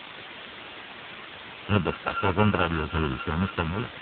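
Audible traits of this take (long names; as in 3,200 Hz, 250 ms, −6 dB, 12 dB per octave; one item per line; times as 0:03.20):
a buzz of ramps at a fixed pitch in blocks of 32 samples
sample-and-hold tremolo
a quantiser's noise floor 6 bits, dither triangular
AMR narrowband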